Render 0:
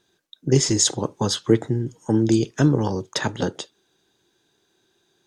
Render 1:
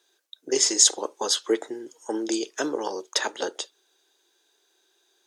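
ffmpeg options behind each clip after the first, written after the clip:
-af "highpass=f=380:w=0.5412,highpass=f=380:w=1.3066,highshelf=f=4200:g=6.5,volume=0.794"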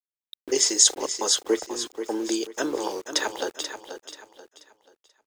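-af "aeval=exprs='val(0)*gte(abs(val(0)),0.0106)':c=same,aecho=1:1:484|968|1452|1936:0.335|0.111|0.0365|0.012"

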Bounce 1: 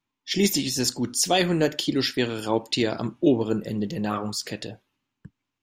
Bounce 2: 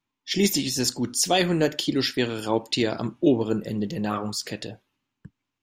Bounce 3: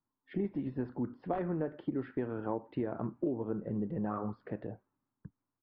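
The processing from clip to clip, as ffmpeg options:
-af anull
-af "aresample=11025,aeval=exprs='(mod(2.66*val(0)+1,2)-1)/2.66':c=same,aresample=44100,lowpass=f=1400:w=0.5412,lowpass=f=1400:w=1.3066,acompressor=threshold=0.0501:ratio=6,volume=0.596"

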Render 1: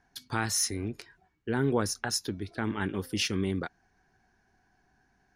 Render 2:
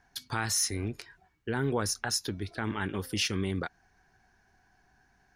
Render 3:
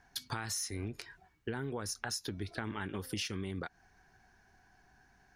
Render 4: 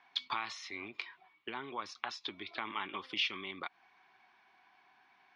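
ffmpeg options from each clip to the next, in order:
-filter_complex "[0:a]equalizer=f=270:t=o:w=1.9:g=-5,asplit=2[s0][s1];[s1]alimiter=level_in=1.33:limit=0.0631:level=0:latency=1:release=115,volume=0.75,volume=1.33[s2];[s0][s2]amix=inputs=2:normalize=0,volume=0.668"
-af "acompressor=threshold=0.0178:ratio=10,volume=1.12"
-af "highpass=460,equalizer=f=470:t=q:w=4:g=-10,equalizer=f=680:t=q:w=4:g=-3,equalizer=f=1100:t=q:w=4:g=9,equalizer=f=1600:t=q:w=4:g=-9,equalizer=f=2300:t=q:w=4:g=9,equalizer=f=3400:t=q:w=4:g=7,lowpass=f=4000:w=0.5412,lowpass=f=4000:w=1.3066,volume=1.33"

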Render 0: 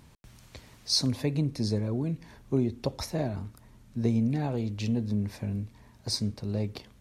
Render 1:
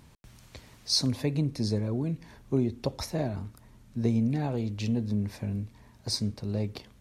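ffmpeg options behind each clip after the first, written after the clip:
-af anull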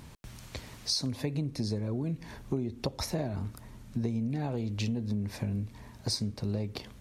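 -af "acompressor=threshold=0.0178:ratio=6,volume=2"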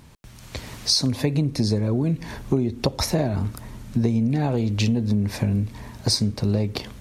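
-af "dynaudnorm=f=350:g=3:m=3.35"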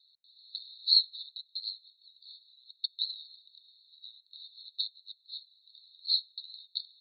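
-af "asuperpass=centerf=4000:order=12:qfactor=5.3,volume=1.5"

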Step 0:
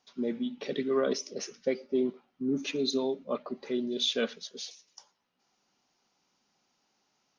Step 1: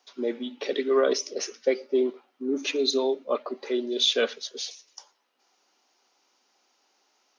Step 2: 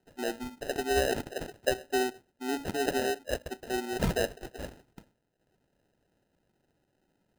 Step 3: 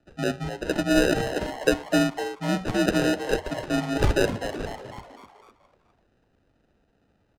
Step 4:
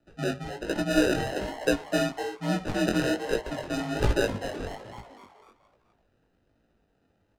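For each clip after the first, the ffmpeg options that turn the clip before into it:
-af "highpass=f=310:w=0.5412,highpass=f=310:w=1.3066,volume=2.11"
-af "acrusher=samples=39:mix=1:aa=0.000001,volume=0.562"
-filter_complex "[0:a]adynamicsmooth=sensitivity=2.5:basefreq=5400,asplit=6[s0][s1][s2][s3][s4][s5];[s1]adelay=251,afreqshift=150,volume=0.316[s6];[s2]adelay=502,afreqshift=300,volume=0.151[s7];[s3]adelay=753,afreqshift=450,volume=0.0724[s8];[s4]adelay=1004,afreqshift=600,volume=0.0351[s9];[s5]adelay=1255,afreqshift=750,volume=0.0168[s10];[s0][s6][s7][s8][s9][s10]amix=inputs=6:normalize=0,afreqshift=-92,volume=2.24"
-af "flanger=delay=17:depth=6.1:speed=1.2"

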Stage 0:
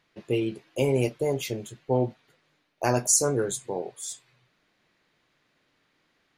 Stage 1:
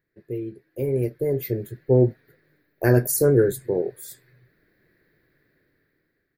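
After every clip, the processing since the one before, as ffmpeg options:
-af "firequalizer=gain_entry='entry(110,0);entry(220,-7);entry(380,0);entry(820,-19);entry(1200,-17);entry(1700,-2);entry(2900,-25);entry(4300,-14);entry(6400,-26);entry(14000,5)':delay=0.05:min_phase=1,dynaudnorm=f=550:g=5:m=5.96,volume=0.75"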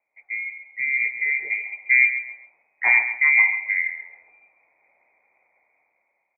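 -filter_complex "[0:a]asplit=2[s0][s1];[s1]aecho=0:1:135|270|405:0.299|0.0866|0.0251[s2];[s0][s2]amix=inputs=2:normalize=0,lowpass=f=2100:t=q:w=0.5098,lowpass=f=2100:t=q:w=0.6013,lowpass=f=2100:t=q:w=0.9,lowpass=f=2100:t=q:w=2.563,afreqshift=-2500"

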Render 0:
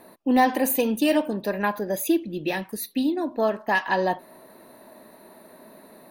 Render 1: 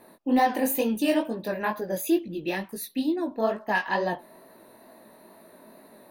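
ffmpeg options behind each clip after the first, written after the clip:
-af "flanger=delay=17:depth=6.2:speed=2.2"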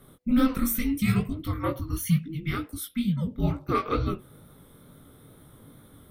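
-af "afreqshift=-500"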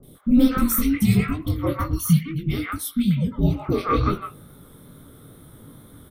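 -filter_complex "[0:a]acrossover=split=740|2400[s0][s1][s2];[s2]adelay=30[s3];[s1]adelay=150[s4];[s0][s4][s3]amix=inputs=3:normalize=0,volume=2"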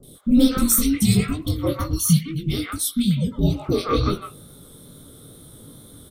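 -af "equalizer=f=500:t=o:w=1:g=3,equalizer=f=1000:t=o:w=1:g=-3,equalizer=f=2000:t=o:w=1:g=-5,equalizer=f=4000:t=o:w=1:g=8,equalizer=f=8000:t=o:w=1:g=10"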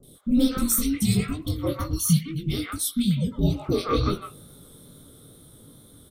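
-af "dynaudnorm=f=270:g=11:m=1.41,volume=0.562"

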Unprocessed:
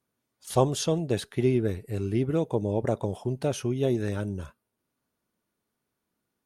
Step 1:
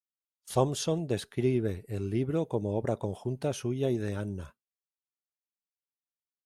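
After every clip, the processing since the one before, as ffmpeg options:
-af "agate=range=0.0224:threshold=0.00891:ratio=3:detection=peak,volume=0.668"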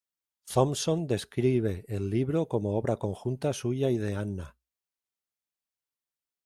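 -af "equalizer=f=61:t=o:w=0.25:g=5,volume=1.26"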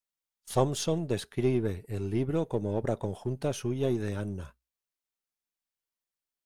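-af "aeval=exprs='if(lt(val(0),0),0.708*val(0),val(0))':c=same"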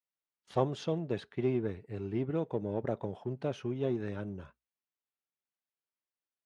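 -af "highpass=110,lowpass=3000,volume=0.668"

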